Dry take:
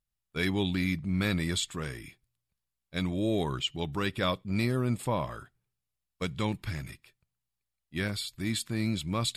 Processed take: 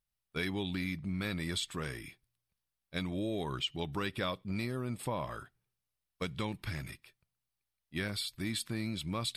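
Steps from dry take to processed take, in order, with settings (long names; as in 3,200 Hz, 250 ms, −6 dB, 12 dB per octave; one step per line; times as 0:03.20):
downward compressor, threshold −30 dBFS, peak gain reduction 7 dB
low-shelf EQ 250 Hz −3.5 dB
notch filter 7,100 Hz, Q 6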